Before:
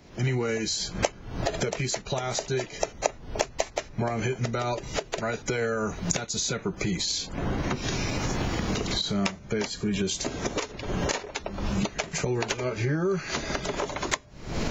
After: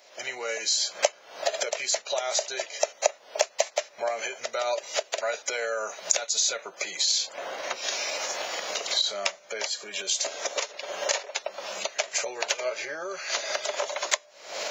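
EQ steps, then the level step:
high-pass with resonance 580 Hz, resonance Q 4.9
tilt shelving filter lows −9.5 dB, about 1,100 Hz
−4.0 dB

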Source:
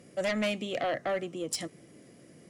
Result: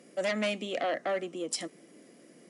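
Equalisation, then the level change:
high-pass filter 200 Hz 24 dB per octave
linear-phase brick-wall low-pass 11,000 Hz
0.0 dB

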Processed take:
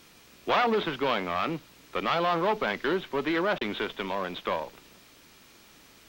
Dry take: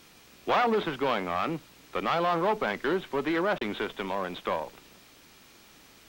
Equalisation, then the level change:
notch filter 780 Hz, Q 20
dynamic equaliser 3,600 Hz, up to +4 dB, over −43 dBFS, Q 0.84
dynamic equaliser 8,700 Hz, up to −5 dB, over −59 dBFS, Q 1.6
0.0 dB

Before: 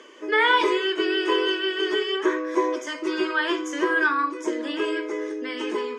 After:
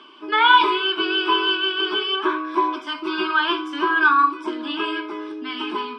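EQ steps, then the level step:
low-pass filter 6,400 Hz 12 dB per octave
dynamic equaliser 1,600 Hz, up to +4 dB, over −36 dBFS, Q 0.9
phaser with its sweep stopped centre 1,900 Hz, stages 6
+5.5 dB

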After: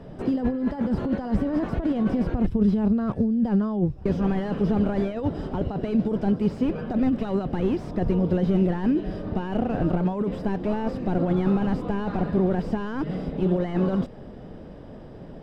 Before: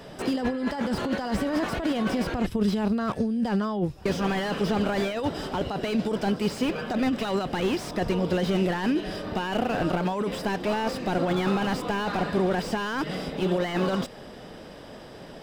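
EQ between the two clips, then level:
spectral tilt −4.5 dB per octave
low-shelf EQ 72 Hz −9 dB
−5.0 dB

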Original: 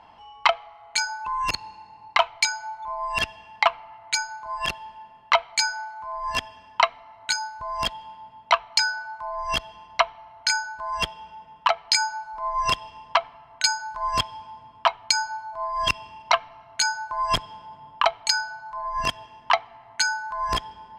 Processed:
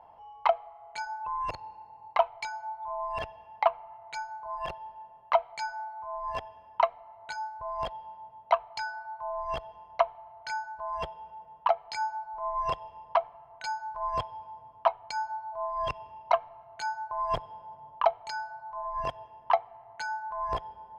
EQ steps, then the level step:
drawn EQ curve 140 Hz 0 dB, 250 Hz −7 dB, 530 Hz +7 dB, 770 Hz +6 dB, 1,400 Hz −5 dB, 7,100 Hz −18 dB
−6.5 dB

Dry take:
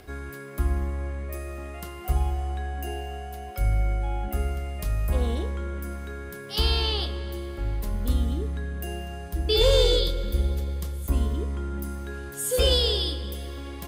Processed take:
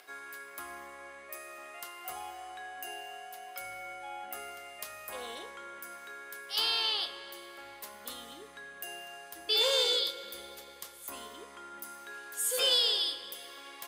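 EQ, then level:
high-pass filter 850 Hz 12 dB per octave
−1.5 dB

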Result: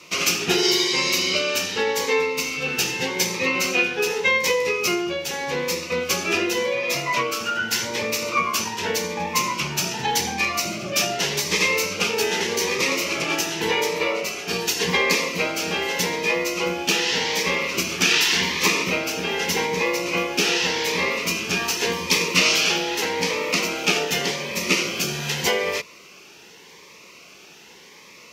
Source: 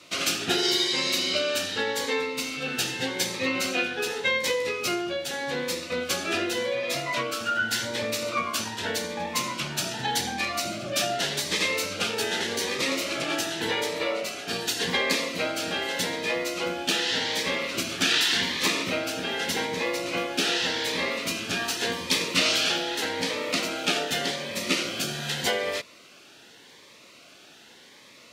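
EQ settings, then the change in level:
EQ curve with evenly spaced ripples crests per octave 0.79, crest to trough 8 dB
+4.0 dB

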